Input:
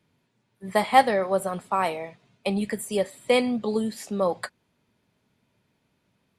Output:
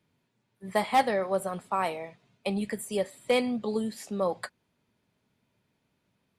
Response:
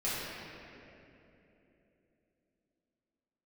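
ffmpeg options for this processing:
-af "asoftclip=type=hard:threshold=-12dB,volume=-4dB"

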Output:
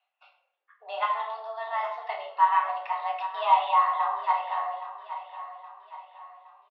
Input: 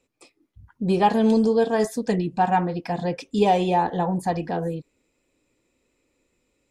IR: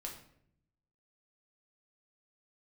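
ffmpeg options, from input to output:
-filter_complex "[0:a]asettb=1/sr,asplit=3[link_01][link_02][link_03];[link_01]atrim=end=1.034[link_04];[link_02]atrim=start=1.03:end=1.83,asetpts=PTS-STARTPTS,afade=type=in:duration=0.004:curve=qsin,afade=type=out:start_time=0.796:duration=0.004:curve=qsin,acompressor=threshold=-20dB:ratio=6[link_05];[link_03]atrim=start=1.826[link_06];[link_04][link_05]acrossfade=duration=0.004:curve1=hsin:curve2=qsin[link_07];[link_07][link_06]acrossfade=duration=0.004:curve1=qsin:curve2=hsin,asettb=1/sr,asplit=3[link_08][link_09][link_10];[link_08]atrim=end=3.914[link_11];[link_09]atrim=start=3.91:end=4.37,asetpts=PTS-STARTPTS,afade=type=in:duration=0.004:curve=qsin,afade=type=out:start_time=0.456:duration=0.004:curve=qsin,asplit=2[link_12][link_13];[link_13]adelay=17,volume=-5.5dB[link_14];[link_12][link_14]amix=inputs=2:normalize=0,atrim=end_sample=20286[link_15];[link_10]atrim=start=4.366[link_16];[link_11][link_15]acrossfade=duration=0.004:curve1=hsin:curve2=qsin[link_17];[link_17][link_16]acrossfade=duration=0.004:curve1=qsin:curve2=hsin,aecho=1:1:819|1638|2457|3276:0.224|0.101|0.0453|0.0204[link_18];[1:a]atrim=start_sample=2205[link_19];[link_18][link_19]afir=irnorm=-1:irlink=0,highpass=frequency=550:width_type=q:width=0.5412,highpass=frequency=550:width_type=q:width=1.307,lowpass=frequency=3300:width_type=q:width=0.5176,lowpass=frequency=3300:width_type=q:width=0.7071,lowpass=frequency=3300:width_type=q:width=1.932,afreqshift=220,volume=1.5dB"

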